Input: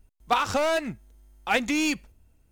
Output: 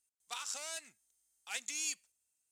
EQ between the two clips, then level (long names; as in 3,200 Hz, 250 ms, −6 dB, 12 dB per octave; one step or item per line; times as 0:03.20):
resonant band-pass 8,000 Hz, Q 2.3
+2.5 dB